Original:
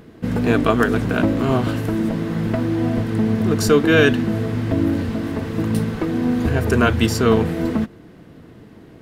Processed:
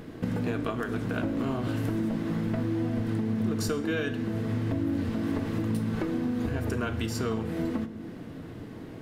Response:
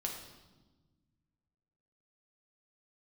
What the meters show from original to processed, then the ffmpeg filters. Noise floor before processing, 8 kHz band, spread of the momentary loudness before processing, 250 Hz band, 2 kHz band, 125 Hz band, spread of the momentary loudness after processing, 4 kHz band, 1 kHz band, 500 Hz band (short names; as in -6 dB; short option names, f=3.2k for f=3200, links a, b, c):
-44 dBFS, -11.0 dB, 7 LU, -9.5 dB, -14.0 dB, -9.5 dB, 7 LU, -13.0 dB, -13.0 dB, -13.5 dB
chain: -filter_complex "[0:a]acompressor=threshold=-28dB:ratio=12,asplit=2[a][b];[1:a]atrim=start_sample=2205,asetrate=70560,aresample=44100[c];[b][c]afir=irnorm=-1:irlink=0,volume=1dB[d];[a][d]amix=inputs=2:normalize=0,volume=-3dB"